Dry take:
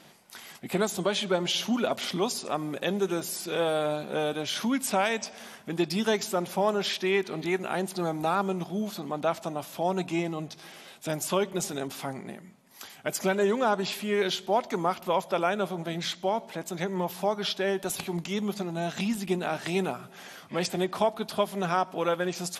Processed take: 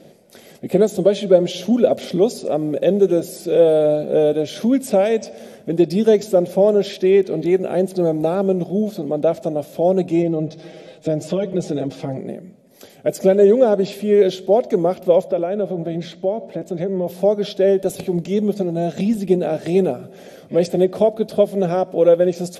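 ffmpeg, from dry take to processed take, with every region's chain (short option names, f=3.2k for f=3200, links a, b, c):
-filter_complex "[0:a]asettb=1/sr,asplit=3[a][b][c];[a]atrim=end=10.224[d];[b]atrim=start=10.22:end=12.18,asetpts=PTS-STARTPTS,afade=t=in:d=0.004:c=qsin,afade=t=out:st=1.956:d=0.004:c=qsin,lowpass=5.6k,aecho=1:1:6.3:0.91,atrim=end_sample=86436,acompressor=threshold=-29dB:ratio=2:attack=3.2:release=140:knee=1:detection=peak[e];[c]atrim=start=12.176[f];[d][e]acrossfade=d=0.004:c1=hsin:c2=qsin[g];[g][f]acrossfade=d=0.004:c1=qsin:c2=hsin,asettb=1/sr,asplit=3[h][i][j];[h]atrim=end=15.274[k];[i]atrim=start=15.27:end=17.07,asetpts=PTS-STARTPTS,afade=t=in:d=0.004:c=qsin,afade=t=out:st=1.796:d=0.004:c=qsin,lowpass=f=3.2k:p=1,acompressor=threshold=-30dB:ratio=2:attack=3.2:release=140:knee=1:detection=peak,bandreject=f=480:w=10[l];[j]atrim=start=17.066[m];[k][l]acrossfade=d=0.004:c1=hsin:c2=qsin[n];[n][m]acrossfade=d=0.004:c1=qsin:c2=hsin,lowshelf=f=740:t=q:w=3:g=10.5,bandreject=f=2.9k:w=24,volume=-1dB"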